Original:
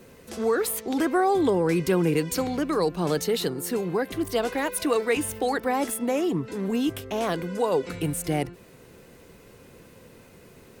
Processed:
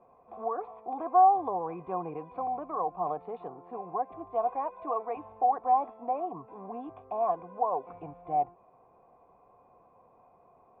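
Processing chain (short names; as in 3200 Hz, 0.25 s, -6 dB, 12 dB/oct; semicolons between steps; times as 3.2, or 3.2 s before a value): vocal tract filter a; gain +8 dB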